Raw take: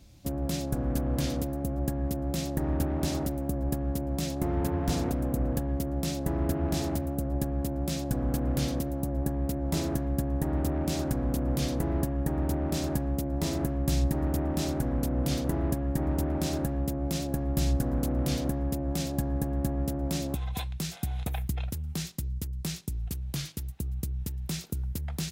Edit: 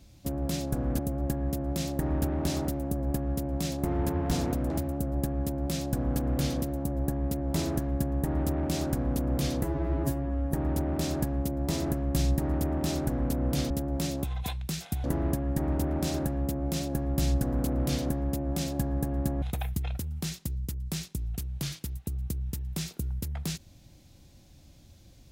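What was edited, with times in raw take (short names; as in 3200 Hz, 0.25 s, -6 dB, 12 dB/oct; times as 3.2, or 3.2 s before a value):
0.99–1.57 cut
5.28–6.88 cut
11.81–12.26 stretch 2×
19.81–21.15 move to 15.43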